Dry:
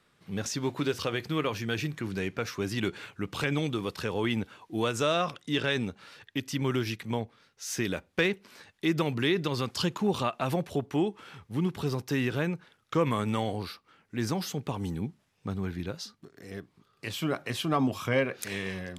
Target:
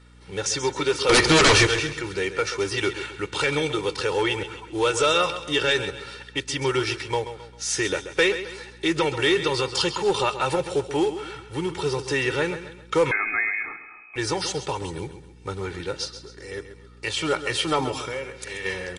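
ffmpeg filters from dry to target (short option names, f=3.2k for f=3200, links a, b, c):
-filter_complex "[0:a]lowshelf=f=250:g=-11.5,aecho=1:1:2.2:0.97,asplit=3[a][b][c];[a]afade=t=out:st=17.99:d=0.02[d];[b]acompressor=threshold=-40dB:ratio=3,afade=t=in:st=17.99:d=0.02,afade=t=out:st=18.64:d=0.02[e];[c]afade=t=in:st=18.64:d=0.02[f];[d][e][f]amix=inputs=3:normalize=0,asoftclip=type=tanh:threshold=-17.5dB,acrusher=bits=5:mode=log:mix=0:aa=0.000001,aeval=exprs='val(0)+0.00141*(sin(2*PI*60*n/s)+sin(2*PI*2*60*n/s)/2+sin(2*PI*3*60*n/s)/3+sin(2*PI*4*60*n/s)/4+sin(2*PI*5*60*n/s)/5)':c=same,asettb=1/sr,asplit=3[g][h][i];[g]atrim=end=1.094[j];[h]atrim=start=1.09:end=1.67,asetpts=PTS-STARTPTS,afade=t=in:d=0.004:c=qsin,afade=t=out:st=0.576:d=0.004:c=qsin,aeval=exprs='0.119*sin(PI/2*3.98*val(0)/0.119)':c=same[k];[i]atrim=start=1.666[l];[j][k]acrossfade=d=0.004:c1=hsin:c2=qsin[m];[m][l]acrossfade=d=0.004:c1=qsin:c2=hsin,aecho=1:1:133|266|399|532:0.266|0.106|0.0426|0.017,asettb=1/sr,asplit=3[n][o][p];[n]atrim=end=13.114[q];[o]atrim=start=13.11:end=14.16,asetpts=PTS-STARTPTS,afade=t=in:d=0.004:c=qsin,afade=t=out:st=1.046:d=0.004:c=qsin,lowpass=f=2.2k:t=q:w=0.5098,lowpass=f=2.2k:t=q:w=0.6013,lowpass=f=2.2k:t=q:w=0.9,lowpass=f=2.2k:t=q:w=2.563,afreqshift=-2600[r];[p]atrim=start=14.156[s];[q][r]acrossfade=d=0.004:c1=hsin:c2=qsin[t];[t][s]acrossfade=d=0.004:c1=qsin:c2=hsin,volume=7dB" -ar 24000 -c:a libmp3lame -b:a 40k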